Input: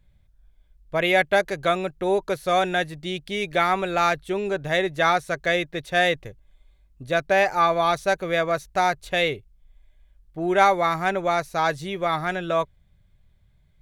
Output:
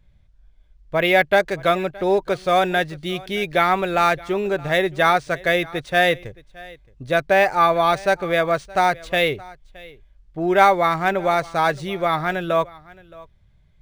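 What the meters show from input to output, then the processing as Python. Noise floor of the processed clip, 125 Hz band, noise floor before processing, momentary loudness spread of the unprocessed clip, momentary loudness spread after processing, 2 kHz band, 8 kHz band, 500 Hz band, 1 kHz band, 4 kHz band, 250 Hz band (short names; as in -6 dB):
-55 dBFS, +3.5 dB, -60 dBFS, 8 LU, 7 LU, +3.0 dB, 0.0 dB, +3.5 dB, +3.5 dB, +2.0 dB, +3.5 dB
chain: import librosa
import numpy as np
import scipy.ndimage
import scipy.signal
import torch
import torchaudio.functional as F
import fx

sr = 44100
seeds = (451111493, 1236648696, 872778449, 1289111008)

p1 = x + fx.echo_single(x, sr, ms=620, db=-22.0, dry=0)
p2 = np.interp(np.arange(len(p1)), np.arange(len(p1))[::3], p1[::3])
y = p2 * librosa.db_to_amplitude(3.5)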